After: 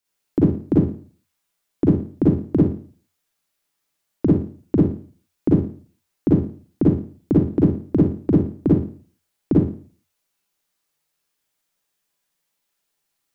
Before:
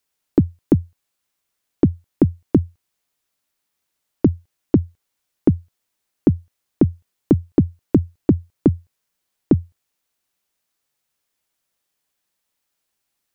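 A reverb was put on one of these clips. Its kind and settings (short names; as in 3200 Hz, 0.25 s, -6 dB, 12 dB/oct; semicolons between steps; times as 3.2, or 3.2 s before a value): Schroeder reverb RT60 0.44 s, DRR -6.5 dB; gain -6.5 dB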